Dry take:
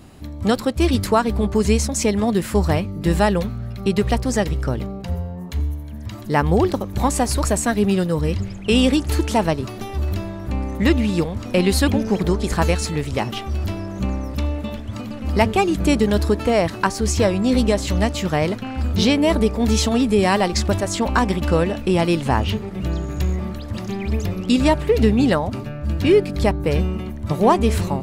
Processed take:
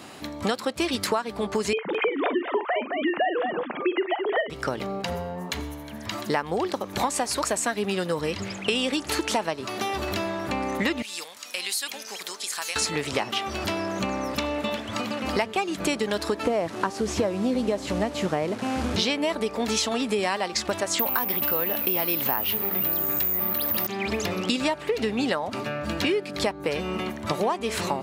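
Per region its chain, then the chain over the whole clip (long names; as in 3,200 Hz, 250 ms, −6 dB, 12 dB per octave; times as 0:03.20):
0:01.73–0:04.50: three sine waves on the formant tracks + multi-tap delay 43/216 ms −11.5/−10 dB
0:11.02–0:12.76: first difference + downward compressor 2 to 1, threshold −36 dBFS
0:16.43–0:18.96: linear delta modulator 64 kbit/s, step −28 dBFS + tilt shelving filter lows +7.5 dB, about 910 Hz
0:20.99–0:23.87: bad sample-rate conversion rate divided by 3×, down filtered, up zero stuff + envelope flattener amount 50%
whole clip: meter weighting curve A; downward compressor 6 to 1, threshold −31 dBFS; level +8 dB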